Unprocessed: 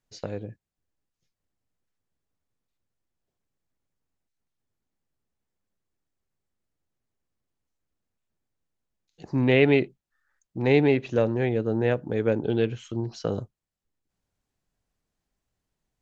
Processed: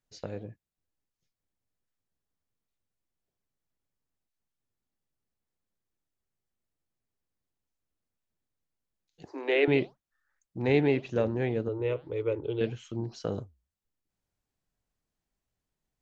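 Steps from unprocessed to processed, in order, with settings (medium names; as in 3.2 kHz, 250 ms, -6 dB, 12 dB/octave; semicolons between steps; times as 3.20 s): 9.25–9.68 s: steep high-pass 290 Hz 96 dB/octave; 11.68–12.61 s: static phaser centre 1.1 kHz, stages 8; flange 1.8 Hz, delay 1.1 ms, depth 7.8 ms, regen -87%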